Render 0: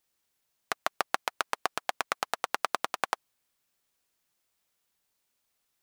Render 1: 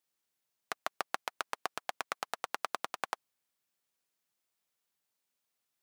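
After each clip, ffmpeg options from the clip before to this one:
-af "highpass=100,volume=-6.5dB"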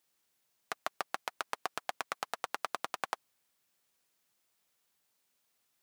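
-af "alimiter=limit=-21dB:level=0:latency=1:release=15,volume=7dB"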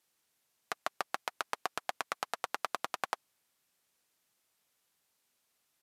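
-af "aresample=32000,aresample=44100,volume=1dB"

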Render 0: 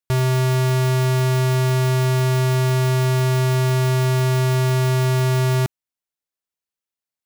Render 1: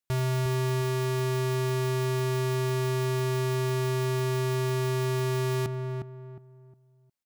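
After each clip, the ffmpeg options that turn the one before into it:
-filter_complex "[0:a]alimiter=level_in=2.5dB:limit=-24dB:level=0:latency=1,volume=-2.5dB,asplit=2[a][b];[b]adelay=359,lowpass=f=1.1k:p=1,volume=-4.5dB,asplit=2[c][d];[d]adelay=359,lowpass=f=1.1k:p=1,volume=0.32,asplit=2[e][f];[f]adelay=359,lowpass=f=1.1k:p=1,volume=0.32,asplit=2[g][h];[h]adelay=359,lowpass=f=1.1k:p=1,volume=0.32[i];[c][e][g][i]amix=inputs=4:normalize=0[j];[a][j]amix=inputs=2:normalize=0"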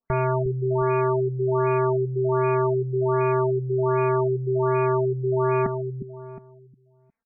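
-af "aecho=1:1:4.4:0.77,afftfilt=real='re*lt(b*sr/1024,350*pow(2700/350,0.5+0.5*sin(2*PI*1.3*pts/sr)))':imag='im*lt(b*sr/1024,350*pow(2700/350,0.5+0.5*sin(2*PI*1.3*pts/sr)))':win_size=1024:overlap=0.75,volume=8dB"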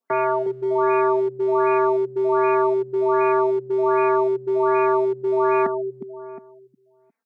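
-filter_complex "[0:a]acrossover=split=380[a][b];[a]asoftclip=type=hard:threshold=-26dB[c];[c][b]amix=inputs=2:normalize=0,highpass=f=240:w=0.5412,highpass=f=240:w=1.3066,volume=4.5dB"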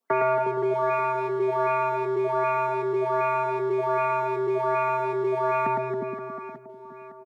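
-filter_complex "[0:a]acrossover=split=230|3000[a][b][c];[b]acompressor=threshold=-22dB:ratio=6[d];[a][d][c]amix=inputs=3:normalize=0,asplit=2[e][f];[f]aecho=0:1:110|275|522.5|893.8|1451:0.631|0.398|0.251|0.158|0.1[g];[e][g]amix=inputs=2:normalize=0,volume=1.5dB"

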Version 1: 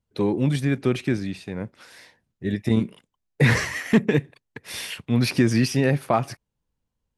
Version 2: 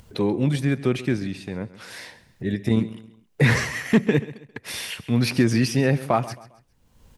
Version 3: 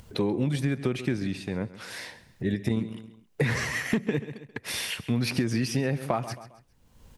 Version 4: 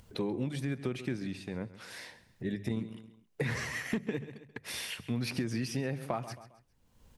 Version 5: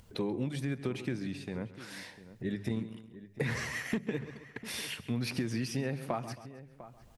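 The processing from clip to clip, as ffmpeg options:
-af "acompressor=mode=upward:threshold=-28dB:ratio=2.5,aecho=1:1:134|268|402:0.141|0.0509|0.0183"
-af "acompressor=threshold=-22dB:ratio=10"
-af "bandreject=f=50:t=h:w=6,bandreject=f=100:t=h:w=6,bandreject=f=150:t=h:w=6,volume=-7dB"
-filter_complex "[0:a]asplit=2[a][b];[b]adelay=699.7,volume=-15dB,highshelf=f=4k:g=-15.7[c];[a][c]amix=inputs=2:normalize=0"

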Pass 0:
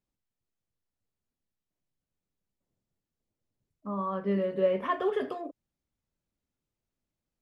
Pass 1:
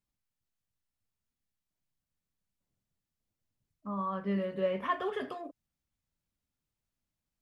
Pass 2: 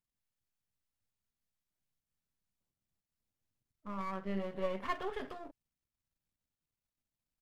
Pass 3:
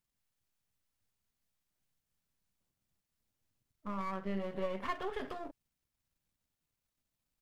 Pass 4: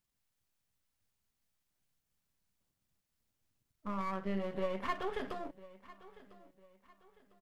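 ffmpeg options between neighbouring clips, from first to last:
-af "equalizer=f=420:t=o:w=1.5:g=-7"
-af "aeval=exprs='if(lt(val(0),0),0.251*val(0),val(0))':c=same,volume=-2dB"
-af "acompressor=threshold=-40dB:ratio=2,volume=4.5dB"
-af "aecho=1:1:1001|2002|3003:0.112|0.0404|0.0145,volume=1dB"

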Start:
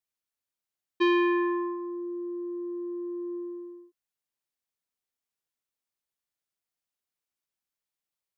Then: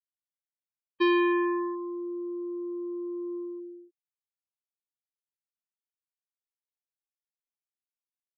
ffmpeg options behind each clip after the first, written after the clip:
-af "afftfilt=real='re*gte(hypot(re,im),0.00794)':imag='im*gte(hypot(re,im),0.00794)':win_size=1024:overlap=0.75"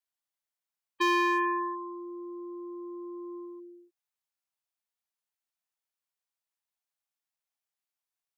-af "asoftclip=type=hard:threshold=-22dB,lowshelf=f=540:t=q:w=1.5:g=-7.5,volume=3.5dB"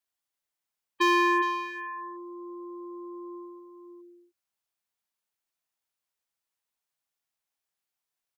-filter_complex "[0:a]asplit=2[a][b];[b]adelay=414,volume=-7dB,highshelf=f=4k:g=-9.32[c];[a][c]amix=inputs=2:normalize=0,volume=3dB"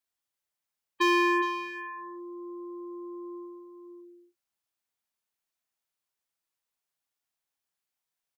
-filter_complex "[0:a]asplit=2[a][b];[b]adelay=34,volume=-11.5dB[c];[a][c]amix=inputs=2:normalize=0,volume=-1dB"

